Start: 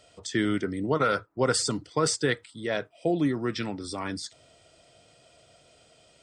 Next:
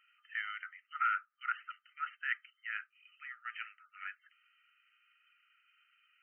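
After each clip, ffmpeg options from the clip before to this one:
ffmpeg -i in.wav -af "afftfilt=real='re*between(b*sr/4096,1200,3100)':imag='im*between(b*sr/4096,1200,3100)':win_size=4096:overlap=0.75,volume=-4dB" out.wav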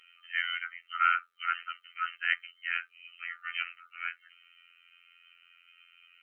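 ffmpeg -i in.wav -af "superequalizer=7b=3.16:12b=2:13b=2.82,afftfilt=real='hypot(re,im)*cos(PI*b)':imag='0':win_size=2048:overlap=0.75,volume=9dB" out.wav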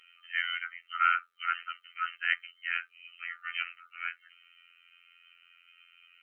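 ffmpeg -i in.wav -af anull out.wav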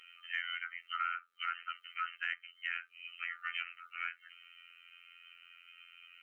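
ffmpeg -i in.wav -af "acompressor=threshold=-38dB:ratio=4,volume=2.5dB" out.wav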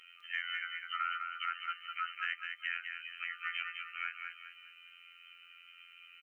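ffmpeg -i in.wav -af "aecho=1:1:204|408|612|816:0.531|0.196|0.0727|0.0269" out.wav

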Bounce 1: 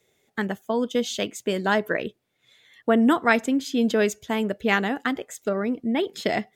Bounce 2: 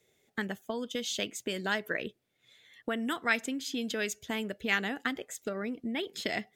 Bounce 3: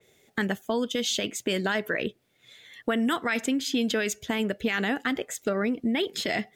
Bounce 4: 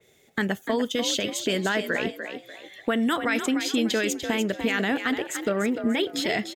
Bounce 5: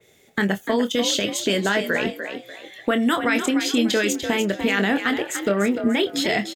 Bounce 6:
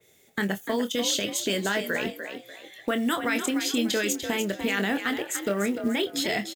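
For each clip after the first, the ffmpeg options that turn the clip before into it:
ffmpeg -i in.wav -filter_complex "[0:a]equalizer=frequency=1000:width=1.5:gain=-3.5,acrossover=split=1400[link_01][link_02];[link_01]acompressor=threshold=-30dB:ratio=6[link_03];[link_03][link_02]amix=inputs=2:normalize=0,volume=-3dB" out.wav
ffmpeg -i in.wav -af "alimiter=level_in=1dB:limit=-24dB:level=0:latency=1:release=16,volume=-1dB,adynamicequalizer=threshold=0.00282:dfrequency=3800:dqfactor=0.7:tfrequency=3800:tqfactor=0.7:attack=5:release=100:ratio=0.375:range=2:mode=cutabove:tftype=highshelf,volume=9dB" out.wav
ffmpeg -i in.wav -filter_complex "[0:a]asplit=5[link_01][link_02][link_03][link_04][link_05];[link_02]adelay=295,afreqshift=50,volume=-8.5dB[link_06];[link_03]adelay=590,afreqshift=100,volume=-18.1dB[link_07];[link_04]adelay=885,afreqshift=150,volume=-27.8dB[link_08];[link_05]adelay=1180,afreqshift=200,volume=-37.4dB[link_09];[link_01][link_06][link_07][link_08][link_09]amix=inputs=5:normalize=0,volume=1.5dB" out.wav
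ffmpeg -i in.wav -filter_complex "[0:a]asplit=2[link_01][link_02];[link_02]adelay=25,volume=-9dB[link_03];[link_01][link_03]amix=inputs=2:normalize=0,volume=3.5dB" out.wav
ffmpeg -i in.wav -filter_complex "[0:a]asplit=2[link_01][link_02];[link_02]acrusher=bits=5:mode=log:mix=0:aa=0.000001,volume=-9.5dB[link_03];[link_01][link_03]amix=inputs=2:normalize=0,crystalizer=i=1:c=0,volume=-8.5dB" out.wav

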